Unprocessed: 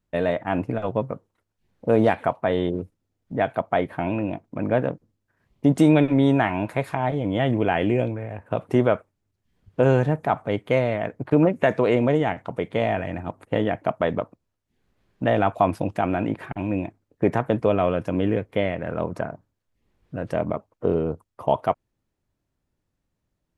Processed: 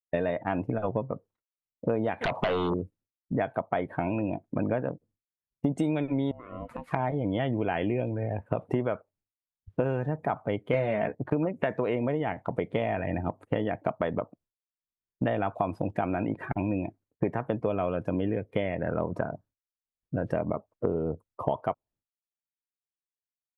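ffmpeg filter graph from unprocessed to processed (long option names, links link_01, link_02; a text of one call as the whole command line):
ffmpeg -i in.wav -filter_complex "[0:a]asettb=1/sr,asplit=3[link_01][link_02][link_03];[link_01]atrim=end=2.214[link_04];[link_02]atrim=start=2.21:end=2.74,asetpts=PTS-STARTPTS,afade=type=in:duration=0.004:curve=qsin,afade=type=out:start_time=0.526:duration=0.004:curve=qsin,acompressor=threshold=-33dB:ratio=5:attack=3.2:release=140:knee=1:detection=peak,aeval=exprs='0.106*sin(PI/2*5.01*val(0)/0.106)':channel_layout=same[link_05];[link_03]atrim=start=2.736[link_06];[link_04][link_05]acrossfade=duration=0.004:curve1=hsin:curve2=qsin[link_07];[link_07][link_06]acrossfade=duration=0.004:curve1=qsin:curve2=hsin,asettb=1/sr,asplit=3[link_08][link_09][link_10];[link_08]atrim=end=6.314[link_11];[link_09]atrim=start=6.31:end=6.91,asetpts=PTS-STARTPTS,afade=type=in:duration=0.004:curve=qsin,afade=type=out:start_time=0.596:duration=0.004:curve=qsin,acompressor=threshold=-31dB:ratio=16:attack=3.2:release=140:knee=1:detection=peak,aeval=exprs='val(0)*sin(2*PI*380*n/s)':channel_layout=same[link_12];[link_10]atrim=start=6.906[link_13];[link_11][link_12]acrossfade=duration=0.004:curve1=hsin:curve2=qsin[link_14];[link_14][link_13]acrossfade=duration=0.004:curve1=qsin:curve2=hsin,asettb=1/sr,asplit=3[link_15][link_16][link_17];[link_15]atrim=end=10.734[link_18];[link_16]atrim=start=10.73:end=11.15,asetpts=PTS-STARTPTS,afade=type=in:duration=0.004:curve=qsin,afade=type=out:start_time=0.416:duration=0.004:curve=qsin,acontrast=86,asplit=2[link_19][link_20];[link_20]adelay=14,volume=-5.5dB[link_21];[link_19][link_21]amix=inputs=2:normalize=0,atrim=end_sample=18522[link_22];[link_17]atrim=start=11.146[link_23];[link_18][link_22]acrossfade=duration=0.004:curve1=hsin:curve2=qsin[link_24];[link_24][link_23]acrossfade=duration=0.004:curve1=qsin:curve2=hsin,agate=range=-33dB:threshold=-51dB:ratio=3:detection=peak,afftdn=noise_reduction=15:noise_floor=-39,acompressor=threshold=-29dB:ratio=6,volume=4dB" out.wav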